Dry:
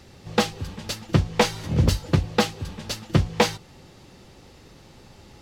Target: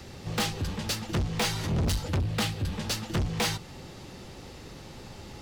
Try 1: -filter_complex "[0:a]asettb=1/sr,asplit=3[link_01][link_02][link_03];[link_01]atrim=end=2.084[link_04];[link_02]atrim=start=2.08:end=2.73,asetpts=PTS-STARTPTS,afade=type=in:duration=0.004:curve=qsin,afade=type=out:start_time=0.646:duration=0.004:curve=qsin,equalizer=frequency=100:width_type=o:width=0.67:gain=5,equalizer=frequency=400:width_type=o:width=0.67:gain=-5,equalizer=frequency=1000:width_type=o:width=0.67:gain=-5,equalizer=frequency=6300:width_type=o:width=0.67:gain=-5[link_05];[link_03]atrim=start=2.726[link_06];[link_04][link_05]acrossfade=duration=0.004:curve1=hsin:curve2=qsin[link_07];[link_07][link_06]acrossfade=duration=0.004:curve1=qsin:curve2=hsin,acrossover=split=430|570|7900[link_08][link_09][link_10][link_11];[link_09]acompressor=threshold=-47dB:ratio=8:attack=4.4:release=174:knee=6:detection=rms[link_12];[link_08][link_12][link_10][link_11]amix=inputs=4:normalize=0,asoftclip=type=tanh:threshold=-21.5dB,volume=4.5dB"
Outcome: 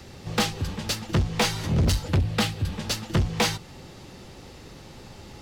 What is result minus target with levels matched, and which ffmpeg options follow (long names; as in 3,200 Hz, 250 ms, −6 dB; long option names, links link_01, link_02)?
soft clipping: distortion −4 dB
-filter_complex "[0:a]asettb=1/sr,asplit=3[link_01][link_02][link_03];[link_01]atrim=end=2.084[link_04];[link_02]atrim=start=2.08:end=2.73,asetpts=PTS-STARTPTS,afade=type=in:duration=0.004:curve=qsin,afade=type=out:start_time=0.646:duration=0.004:curve=qsin,equalizer=frequency=100:width_type=o:width=0.67:gain=5,equalizer=frequency=400:width_type=o:width=0.67:gain=-5,equalizer=frequency=1000:width_type=o:width=0.67:gain=-5,equalizer=frequency=6300:width_type=o:width=0.67:gain=-5[link_05];[link_03]atrim=start=2.726[link_06];[link_04][link_05]acrossfade=duration=0.004:curve1=hsin:curve2=qsin[link_07];[link_07][link_06]acrossfade=duration=0.004:curve1=qsin:curve2=hsin,acrossover=split=430|570|7900[link_08][link_09][link_10][link_11];[link_09]acompressor=threshold=-47dB:ratio=8:attack=4.4:release=174:knee=6:detection=rms[link_12];[link_08][link_12][link_10][link_11]amix=inputs=4:normalize=0,asoftclip=type=tanh:threshold=-28.5dB,volume=4.5dB"